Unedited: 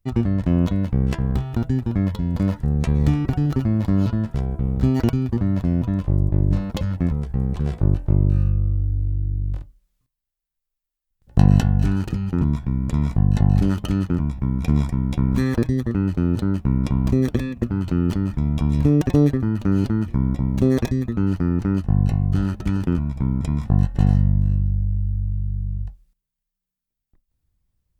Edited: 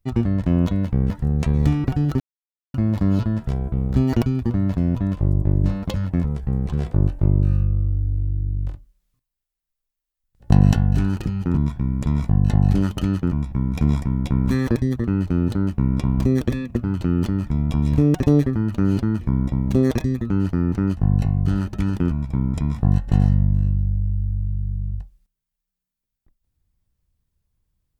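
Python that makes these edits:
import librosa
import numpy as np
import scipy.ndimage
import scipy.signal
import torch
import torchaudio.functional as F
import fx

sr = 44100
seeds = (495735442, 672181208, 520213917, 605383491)

y = fx.edit(x, sr, fx.cut(start_s=1.1, length_s=1.41),
    fx.insert_silence(at_s=3.61, length_s=0.54), tone=tone)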